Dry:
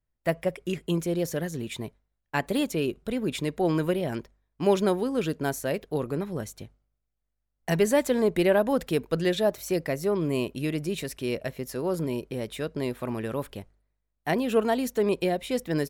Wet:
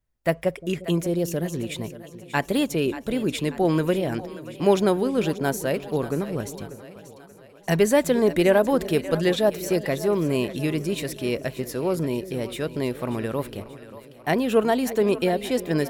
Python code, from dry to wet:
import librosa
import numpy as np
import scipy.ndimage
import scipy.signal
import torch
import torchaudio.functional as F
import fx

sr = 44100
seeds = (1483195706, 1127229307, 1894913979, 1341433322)

y = fx.peak_eq(x, sr, hz=2000.0, db=-6.5, octaves=2.0, at=(1.02, 1.53))
y = fx.echo_split(y, sr, split_hz=480.0, low_ms=353, high_ms=585, feedback_pct=52, wet_db=-14)
y = F.gain(torch.from_numpy(y), 3.5).numpy()